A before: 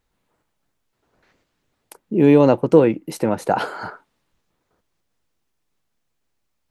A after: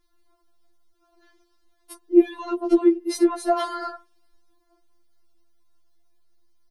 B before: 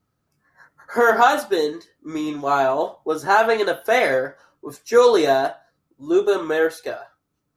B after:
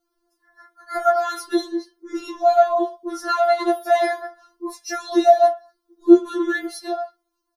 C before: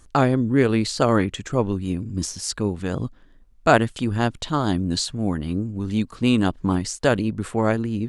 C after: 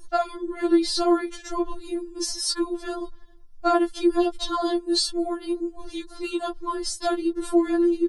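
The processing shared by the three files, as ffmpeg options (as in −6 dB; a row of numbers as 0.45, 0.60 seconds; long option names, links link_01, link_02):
-af "acompressor=threshold=-19dB:ratio=6,aecho=1:1:2.7:0.51,afftfilt=real='re*4*eq(mod(b,16),0)':imag='im*4*eq(mod(b,16),0)':win_size=2048:overlap=0.75,volume=3dB"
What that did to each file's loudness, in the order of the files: −4.5, −0.5, −2.5 LU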